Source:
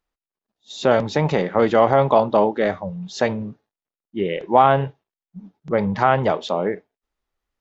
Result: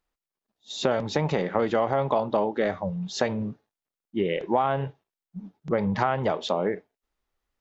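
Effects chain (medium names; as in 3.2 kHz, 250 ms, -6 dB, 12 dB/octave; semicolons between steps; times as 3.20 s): compression 4:1, threshold -21 dBFS, peak gain reduction 11 dB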